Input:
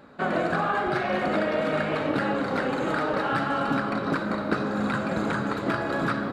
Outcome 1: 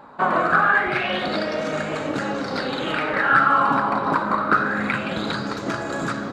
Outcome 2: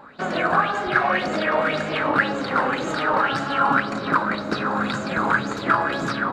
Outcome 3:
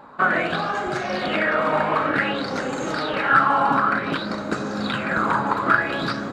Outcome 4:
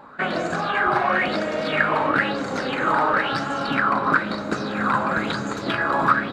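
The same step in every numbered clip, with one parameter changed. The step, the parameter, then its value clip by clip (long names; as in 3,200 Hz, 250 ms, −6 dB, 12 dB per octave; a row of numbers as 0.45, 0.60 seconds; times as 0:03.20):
auto-filter bell, speed: 0.25, 1.9, 0.55, 1 Hertz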